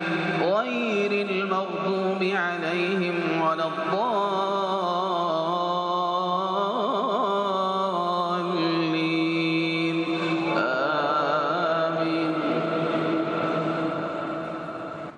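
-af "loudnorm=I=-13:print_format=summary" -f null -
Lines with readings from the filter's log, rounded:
Input Integrated:    -25.3 LUFS
Input True Peak:     -10.9 dBTP
Input LRA:             2.8 LU
Input Threshold:     -35.3 LUFS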